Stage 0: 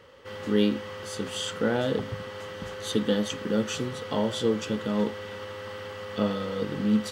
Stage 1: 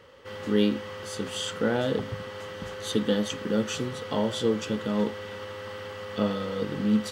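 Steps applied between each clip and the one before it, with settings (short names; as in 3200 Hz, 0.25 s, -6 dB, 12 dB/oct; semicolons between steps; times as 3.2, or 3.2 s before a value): nothing audible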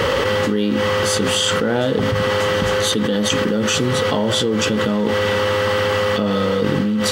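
fast leveller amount 100%; gain +1 dB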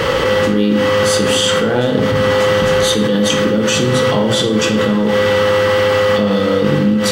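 shoebox room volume 250 m³, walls mixed, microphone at 0.71 m; gain +1.5 dB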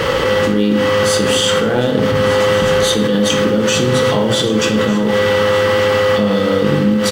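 crackle 540/s -38 dBFS; crossover distortion -37.5 dBFS; echo 1.198 s -16 dB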